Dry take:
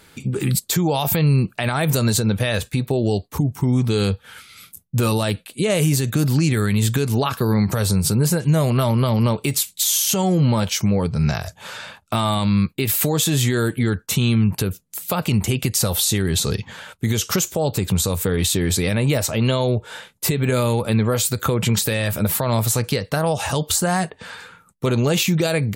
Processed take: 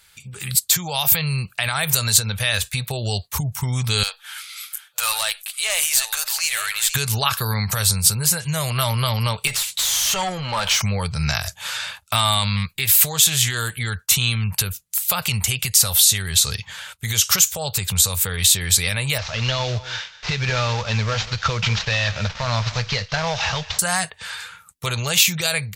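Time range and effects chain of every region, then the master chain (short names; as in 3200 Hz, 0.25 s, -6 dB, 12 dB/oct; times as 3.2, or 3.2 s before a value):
4.03–6.95 reverse delay 0.532 s, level -12 dB + inverse Chebyshev high-pass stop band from 250 Hz, stop band 50 dB + tube stage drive 20 dB, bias 0.3
9.47–10.82 compressor 12:1, threshold -28 dBFS + overdrive pedal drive 27 dB, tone 1500 Hz, clips at -9.5 dBFS
12.56–13.78 upward compressor, threshold -25 dBFS + Doppler distortion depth 0.14 ms
19.18–23.79 CVSD 32 kbps + echo 0.198 s -17.5 dB
whole clip: passive tone stack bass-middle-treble 10-0-10; AGC gain up to 11.5 dB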